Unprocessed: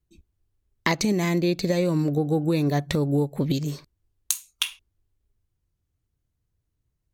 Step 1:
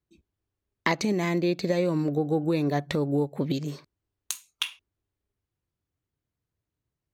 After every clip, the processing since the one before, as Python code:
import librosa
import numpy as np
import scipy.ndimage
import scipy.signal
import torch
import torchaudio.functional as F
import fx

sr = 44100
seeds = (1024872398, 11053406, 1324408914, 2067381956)

y = fx.highpass(x, sr, hz=230.0, slope=6)
y = fx.high_shelf(y, sr, hz=5000.0, db=-11.0)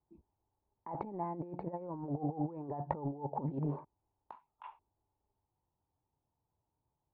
y = fx.over_compress(x, sr, threshold_db=-31.0, ratio=-0.5)
y = fx.ladder_lowpass(y, sr, hz=930.0, resonance_pct=80)
y = y * 10.0 ** (5.0 / 20.0)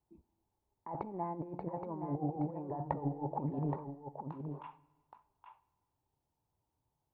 y = x + 10.0 ** (-7.0 / 20.0) * np.pad(x, (int(822 * sr / 1000.0), 0))[:len(x)]
y = fx.rev_schroeder(y, sr, rt60_s=1.3, comb_ms=33, drr_db=19.0)